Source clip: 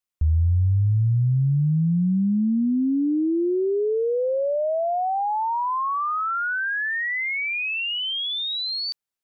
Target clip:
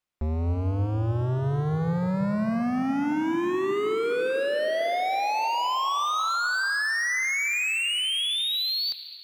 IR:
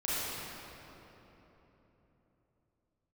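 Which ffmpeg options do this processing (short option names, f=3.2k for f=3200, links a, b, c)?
-filter_complex "[0:a]lowpass=f=2.9k:p=1,asoftclip=type=hard:threshold=-31.5dB,asplit=2[a][b];[1:a]atrim=start_sample=2205,adelay=72[c];[b][c]afir=irnorm=-1:irlink=0,volume=-18dB[d];[a][d]amix=inputs=2:normalize=0,volume=6dB"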